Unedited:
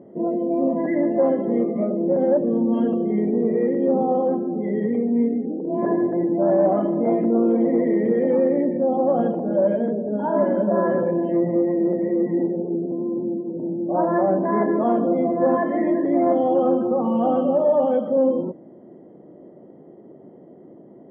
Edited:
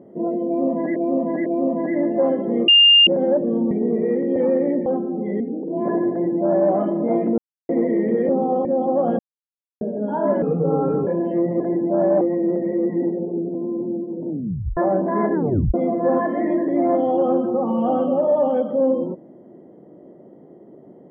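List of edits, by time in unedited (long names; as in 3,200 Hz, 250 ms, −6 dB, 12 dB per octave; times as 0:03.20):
0:00.46–0:00.96: repeat, 3 plays
0:01.68–0:02.07: beep over 2,810 Hz −8 dBFS
0:02.71–0:03.23: remove
0:03.88–0:04.24: swap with 0:08.26–0:08.76
0:04.78–0:05.37: remove
0:06.08–0:06.69: duplicate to 0:11.58
0:07.35–0:07.66: silence
0:09.30–0:09.92: silence
0:10.53–0:11.05: play speed 80%
0:13.66: tape stop 0.48 s
0:14.71: tape stop 0.40 s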